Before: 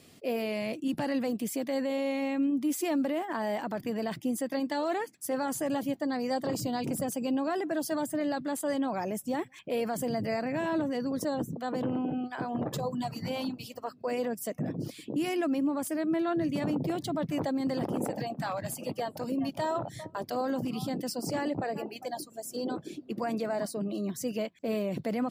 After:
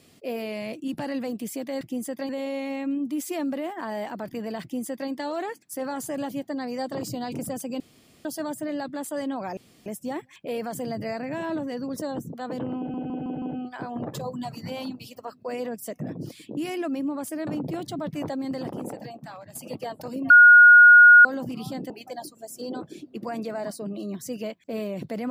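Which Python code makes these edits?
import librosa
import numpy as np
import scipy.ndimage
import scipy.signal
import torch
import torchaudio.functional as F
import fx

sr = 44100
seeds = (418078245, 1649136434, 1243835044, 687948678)

y = fx.edit(x, sr, fx.duplicate(start_s=4.14, length_s=0.48, to_s=1.81),
    fx.room_tone_fill(start_s=7.32, length_s=0.45),
    fx.insert_room_tone(at_s=9.09, length_s=0.29),
    fx.stutter(start_s=12.01, slice_s=0.16, count=5),
    fx.cut(start_s=16.06, length_s=0.57),
    fx.fade_out_to(start_s=17.62, length_s=1.09, floor_db=-12.0),
    fx.bleep(start_s=19.46, length_s=0.95, hz=1440.0, db=-7.5),
    fx.cut(start_s=21.06, length_s=0.79), tone=tone)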